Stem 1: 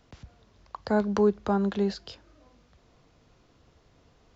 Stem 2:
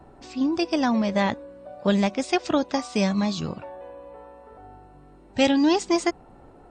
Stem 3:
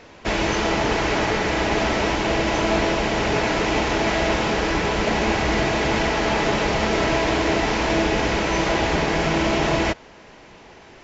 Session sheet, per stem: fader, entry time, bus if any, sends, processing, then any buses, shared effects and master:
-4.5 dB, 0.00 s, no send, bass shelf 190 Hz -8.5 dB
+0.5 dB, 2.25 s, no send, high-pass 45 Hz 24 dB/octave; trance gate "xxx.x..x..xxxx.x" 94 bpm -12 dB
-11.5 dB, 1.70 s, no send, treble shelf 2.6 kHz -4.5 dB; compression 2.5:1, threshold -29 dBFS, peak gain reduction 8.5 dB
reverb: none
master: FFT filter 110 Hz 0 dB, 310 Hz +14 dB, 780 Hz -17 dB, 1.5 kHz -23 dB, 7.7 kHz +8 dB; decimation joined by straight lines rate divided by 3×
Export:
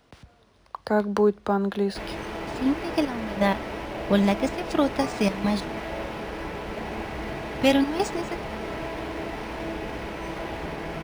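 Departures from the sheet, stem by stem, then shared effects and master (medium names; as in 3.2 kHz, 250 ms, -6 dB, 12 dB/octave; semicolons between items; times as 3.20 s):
stem 1 -4.5 dB -> +4.0 dB; stem 3: missing compression 2.5:1, threshold -29 dBFS, peak gain reduction 8.5 dB; master: missing FFT filter 110 Hz 0 dB, 310 Hz +14 dB, 780 Hz -17 dB, 1.5 kHz -23 dB, 7.7 kHz +8 dB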